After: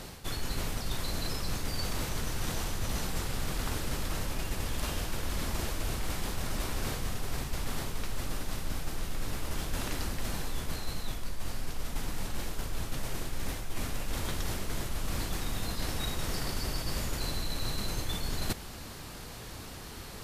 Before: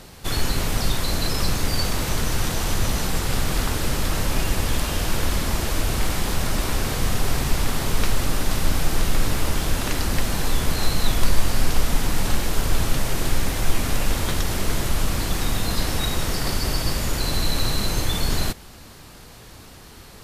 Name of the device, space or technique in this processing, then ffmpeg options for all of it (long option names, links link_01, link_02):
compression on the reversed sound: -af "areverse,acompressor=threshold=-28dB:ratio=12,areverse"